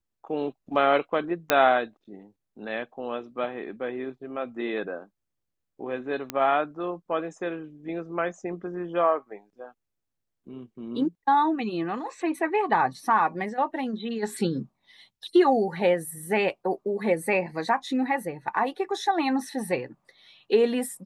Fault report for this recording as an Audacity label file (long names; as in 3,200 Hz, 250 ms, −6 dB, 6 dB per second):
1.500000	1.500000	click −4 dBFS
6.300000	6.300000	click −13 dBFS